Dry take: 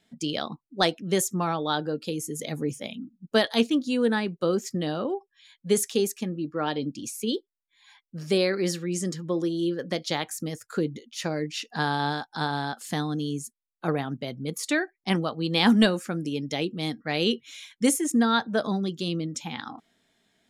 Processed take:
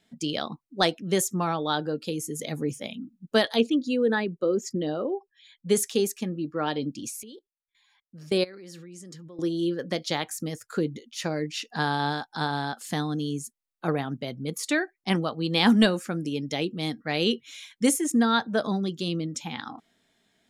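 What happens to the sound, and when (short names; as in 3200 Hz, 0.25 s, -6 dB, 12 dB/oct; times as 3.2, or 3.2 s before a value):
3.56–5.69 formant sharpening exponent 1.5
7.23–9.39 level quantiser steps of 22 dB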